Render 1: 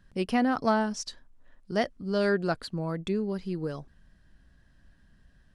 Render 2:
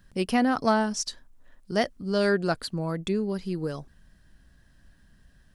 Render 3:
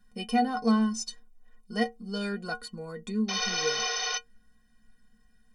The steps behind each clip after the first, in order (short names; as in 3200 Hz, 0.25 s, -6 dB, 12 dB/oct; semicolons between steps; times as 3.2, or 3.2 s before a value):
high shelf 6700 Hz +10 dB; gain +2 dB
painted sound noise, 3.28–4.18, 370–6400 Hz -26 dBFS; metallic resonator 220 Hz, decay 0.22 s, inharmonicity 0.03; gain +7 dB